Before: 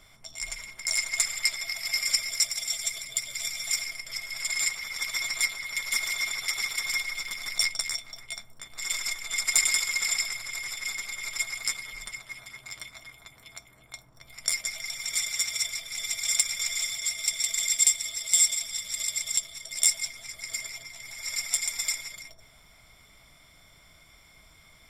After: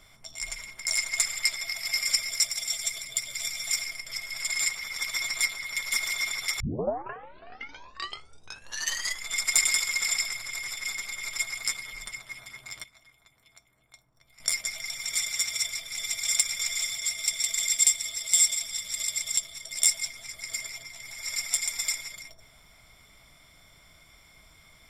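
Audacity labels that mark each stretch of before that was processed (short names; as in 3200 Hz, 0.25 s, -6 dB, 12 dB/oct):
6.600000	6.600000	tape start 2.68 s
12.840000	14.400000	gain -11.5 dB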